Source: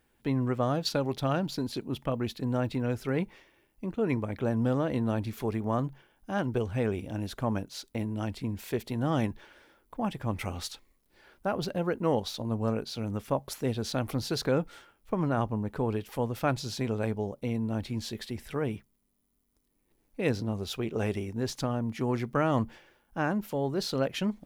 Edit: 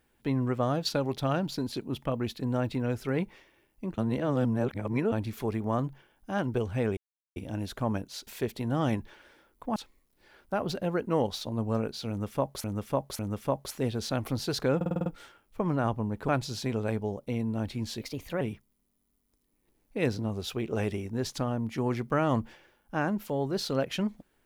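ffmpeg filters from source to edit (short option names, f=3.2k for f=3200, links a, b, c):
-filter_complex "[0:a]asplit=17[a][b][c][d][e][f][g][h][i][j][k][l][m][n][o][p][q];[a]atrim=end=3.982[r];[b]atrim=start=3.978:end=5.122,asetpts=PTS-STARTPTS,areverse[s];[c]atrim=start=5.118:end=6.97,asetpts=PTS-STARTPTS,afade=t=out:st=1.848:d=0.004:c=hsin,apad=pad_dur=0.39[t];[d]atrim=start=6.97:end=7.882,asetpts=PTS-STARTPTS,afade=t=in:d=0.004:c=hsin[u];[e]atrim=start=8.578:end=10.072[v];[f]atrim=start=10.688:end=13.572[w];[g]atrim=start=13.018:end=13.572[x];[h]atrim=start=13.018:end=14.642[y];[i]atrim=start=14.588:end=14.642[z];[j]atrim=start=14.588:end=14.642[aa];[k]atrim=start=14.588:end=14.642[ab];[l]atrim=start=14.588:end=14.642[ac];[m]atrim=start=14.588:end=14.642[ad];[n]atrim=start=14.588:end=15.812[ae];[o]atrim=start=16.428:end=18.164[af];[p]atrim=start=18.16:end=18.64,asetpts=PTS-STARTPTS,asetrate=52920,aresample=44100[ag];[q]atrim=start=18.636[ah];[r][s]acrossfade=d=0.004:c1=hsin:c2=hsin[ai];[t][u]concat=n=2:v=0:a=1[aj];[ai][aj]acrossfade=d=0.004:c1=hsin:c2=hsin[ak];[ak][v]acrossfade=d=0.004:c1=hsin:c2=hsin[al];[al][w]acrossfade=d=0.004:c1=hsin:c2=hsin[am];[am][x]acrossfade=d=0.004:c1=hsin:c2=hsin[an];[an][y]acrossfade=d=0.004:c1=hsin:c2=hsin[ao];[ao][z]acrossfade=d=0.004:c1=hsin:c2=hsin[ap];[ap][aa]acrossfade=d=0.004:c1=hsin:c2=hsin[aq];[aq][ab]acrossfade=d=0.004:c1=hsin:c2=hsin[ar];[ar][ac]acrossfade=d=0.004:c1=hsin:c2=hsin[as];[as][ad]acrossfade=d=0.004:c1=hsin:c2=hsin[at];[at][ae]acrossfade=d=0.004:c1=hsin:c2=hsin[au];[au][af]acrossfade=d=0.004:c1=hsin:c2=hsin[av];[av][ag]acrossfade=d=0.004:c1=hsin:c2=hsin[aw];[aw][ah]acrossfade=d=0.004:c1=hsin:c2=hsin"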